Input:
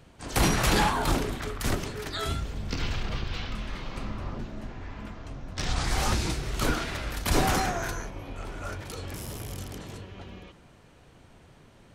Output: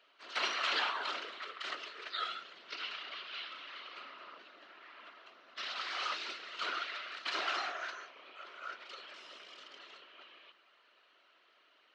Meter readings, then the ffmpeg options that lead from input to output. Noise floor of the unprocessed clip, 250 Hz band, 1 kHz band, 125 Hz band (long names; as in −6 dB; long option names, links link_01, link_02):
−55 dBFS, −26.5 dB, −9.0 dB, below −40 dB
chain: -af "afftfilt=real='hypot(re,im)*cos(2*PI*random(0))':imag='hypot(re,im)*sin(2*PI*random(1))':win_size=512:overlap=0.75,highpass=frequency=460:width=0.5412,highpass=frequency=460:width=1.3066,equalizer=frequency=480:width_type=q:width=4:gain=-8,equalizer=frequency=820:width_type=q:width=4:gain=-9,equalizer=frequency=1300:width_type=q:width=4:gain=7,equalizer=frequency=2000:width_type=q:width=4:gain=3,equalizer=frequency=2900:width_type=q:width=4:gain=8,equalizer=frequency=4100:width_type=q:width=4:gain=5,lowpass=frequency=4800:width=0.5412,lowpass=frequency=4800:width=1.3066,volume=-3dB"